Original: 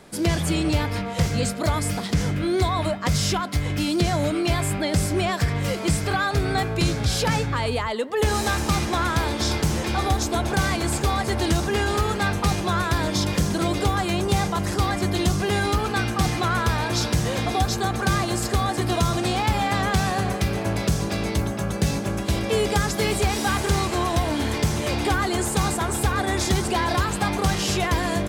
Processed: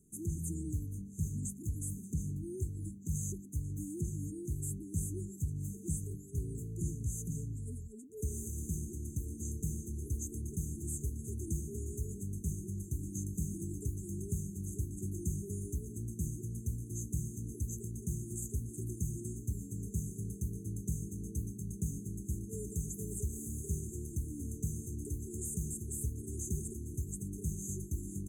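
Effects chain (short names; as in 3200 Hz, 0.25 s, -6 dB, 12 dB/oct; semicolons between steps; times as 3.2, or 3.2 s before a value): low shelf 90 Hz -6 dB; FFT band-reject 450–6100 Hz; passive tone stack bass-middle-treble 6-0-2; gain +3.5 dB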